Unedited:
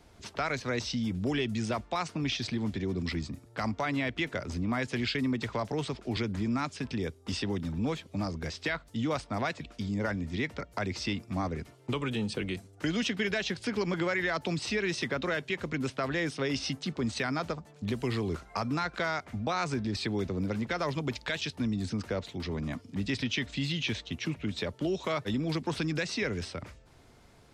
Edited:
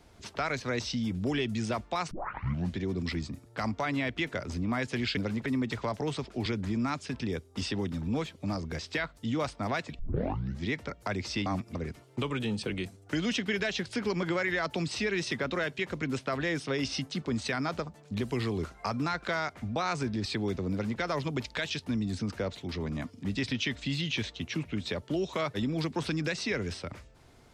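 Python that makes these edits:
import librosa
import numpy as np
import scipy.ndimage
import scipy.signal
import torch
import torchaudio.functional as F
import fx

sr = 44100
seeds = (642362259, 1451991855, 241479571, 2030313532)

y = fx.edit(x, sr, fx.tape_start(start_s=2.11, length_s=0.66),
    fx.tape_start(start_s=9.7, length_s=0.66),
    fx.reverse_span(start_s=11.17, length_s=0.29),
    fx.duplicate(start_s=20.42, length_s=0.29, to_s=5.17), tone=tone)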